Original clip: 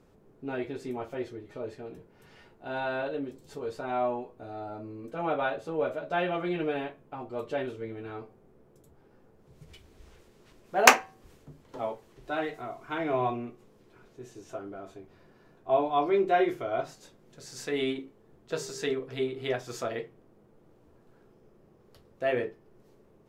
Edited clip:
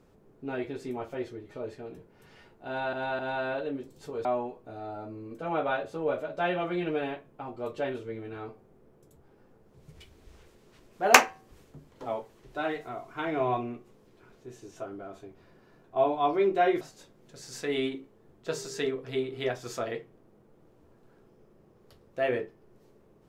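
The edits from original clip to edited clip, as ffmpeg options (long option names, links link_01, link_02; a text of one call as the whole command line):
ffmpeg -i in.wav -filter_complex "[0:a]asplit=5[link_01][link_02][link_03][link_04][link_05];[link_01]atrim=end=2.932[link_06];[link_02]atrim=start=2.668:end=2.932[link_07];[link_03]atrim=start=2.668:end=3.732[link_08];[link_04]atrim=start=3.978:end=16.542[link_09];[link_05]atrim=start=16.848[link_10];[link_06][link_07]acrossfade=duration=0.004:curve1=hsin:curve2=hsin[link_11];[link_11][link_08]acrossfade=duration=0.004:curve1=hsin:curve2=hsin[link_12];[link_12][link_09]acrossfade=duration=0.004:curve1=hsin:curve2=hsin[link_13];[link_13][link_10]acrossfade=duration=0.004:curve1=hsin:curve2=hsin" out.wav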